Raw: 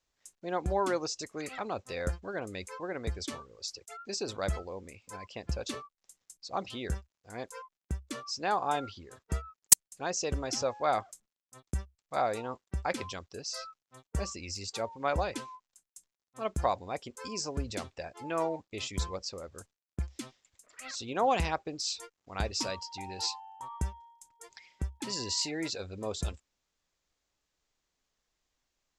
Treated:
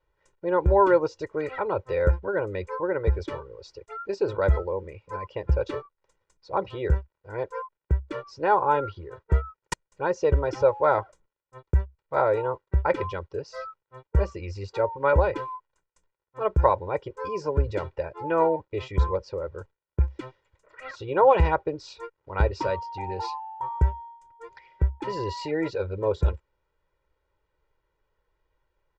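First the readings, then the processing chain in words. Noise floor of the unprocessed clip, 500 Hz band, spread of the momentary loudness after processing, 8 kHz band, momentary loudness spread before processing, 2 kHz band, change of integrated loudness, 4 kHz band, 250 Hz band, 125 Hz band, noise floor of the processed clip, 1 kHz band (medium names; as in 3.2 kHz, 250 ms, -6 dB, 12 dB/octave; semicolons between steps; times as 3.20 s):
under -85 dBFS, +11.5 dB, 16 LU, under -15 dB, 15 LU, +6.0 dB, +7.5 dB, -8.5 dB, +6.0 dB, +11.5 dB, -83 dBFS, +8.0 dB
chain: low-pass 1.5 kHz 12 dB/octave; comb 2.1 ms, depth 94%; trim +7.5 dB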